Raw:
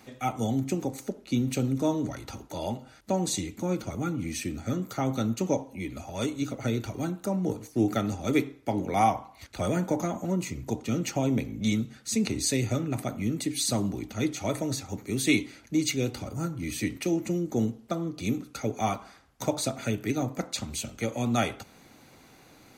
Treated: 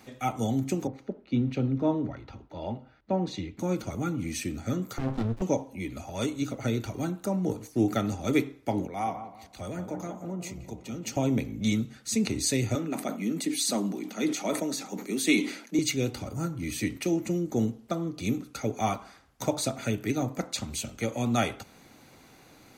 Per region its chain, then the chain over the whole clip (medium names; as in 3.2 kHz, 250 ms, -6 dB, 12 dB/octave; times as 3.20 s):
0.87–3.59 s: distance through air 290 m + three bands expanded up and down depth 40%
4.98–5.42 s: low-pass 4 kHz + sliding maximum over 65 samples
8.87–11.17 s: compression 1.5:1, threshold -47 dBFS + filtered feedback delay 178 ms, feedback 56%, low-pass 1.6 kHz, level -8 dB + three bands expanded up and down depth 70%
12.75–15.79 s: steep high-pass 170 Hz 48 dB/octave + decay stretcher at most 98 dB/s
whole clip: none